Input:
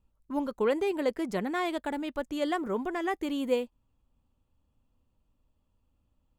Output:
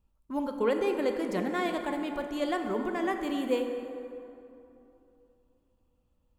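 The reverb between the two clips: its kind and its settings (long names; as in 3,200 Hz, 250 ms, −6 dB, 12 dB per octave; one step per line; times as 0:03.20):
dense smooth reverb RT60 3 s, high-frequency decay 0.5×, DRR 4.5 dB
level −1 dB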